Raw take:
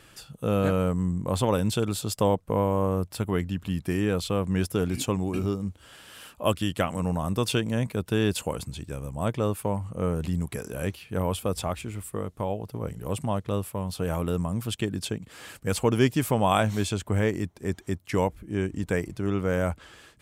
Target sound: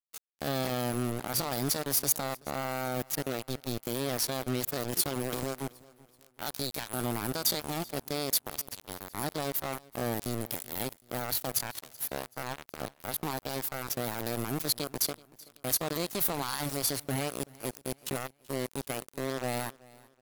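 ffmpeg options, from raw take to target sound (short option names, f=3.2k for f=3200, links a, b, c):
-af "alimiter=limit=-20dB:level=0:latency=1:release=81,aexciter=amount=3.3:drive=3.8:freq=2.9k,aeval=exprs='val(0)*gte(abs(val(0)),0.0531)':c=same,asetrate=58866,aresample=44100,atempo=0.749154,aecho=1:1:380|760|1140:0.075|0.0292|0.0114,volume=-3dB"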